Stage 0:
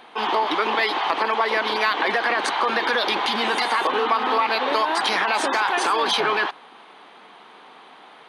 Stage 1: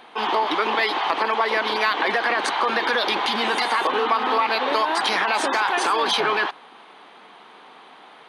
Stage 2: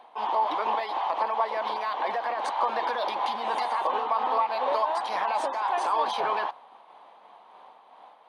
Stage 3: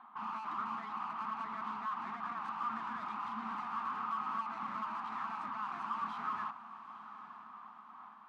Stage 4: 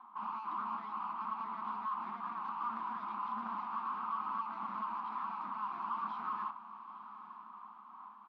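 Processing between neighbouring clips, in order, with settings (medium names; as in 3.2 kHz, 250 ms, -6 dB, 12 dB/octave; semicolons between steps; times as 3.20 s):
no audible change
flange 0.35 Hz, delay 2.7 ms, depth 3.6 ms, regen -79%; high-order bell 750 Hz +12 dB 1.3 oct; random flutter of the level, depth 55%; trim -7.5 dB
valve stage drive 37 dB, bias 0.25; two resonant band-passes 520 Hz, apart 2.5 oct; echo that smears into a reverb 931 ms, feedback 46%, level -14 dB; trim +10.5 dB
cabinet simulation 160–5100 Hz, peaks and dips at 200 Hz +5 dB, 340 Hz +6 dB, 610 Hz -3 dB, 1 kHz +9 dB, 1.8 kHz -6 dB; doubling 30 ms -13 dB; loudspeaker Doppler distortion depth 0.11 ms; trim -4.5 dB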